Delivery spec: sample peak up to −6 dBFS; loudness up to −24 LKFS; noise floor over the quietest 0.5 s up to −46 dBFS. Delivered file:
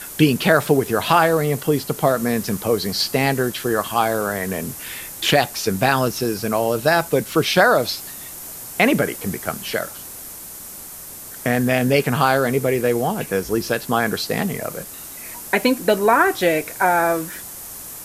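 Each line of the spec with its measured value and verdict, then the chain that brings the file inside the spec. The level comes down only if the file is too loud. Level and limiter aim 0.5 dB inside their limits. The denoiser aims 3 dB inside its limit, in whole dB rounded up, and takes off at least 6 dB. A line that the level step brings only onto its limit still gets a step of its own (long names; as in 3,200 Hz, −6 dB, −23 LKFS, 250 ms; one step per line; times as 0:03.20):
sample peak −2.0 dBFS: out of spec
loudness −19.5 LKFS: out of spec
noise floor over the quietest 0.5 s −36 dBFS: out of spec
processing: broadband denoise 8 dB, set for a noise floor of −36 dBFS
level −5 dB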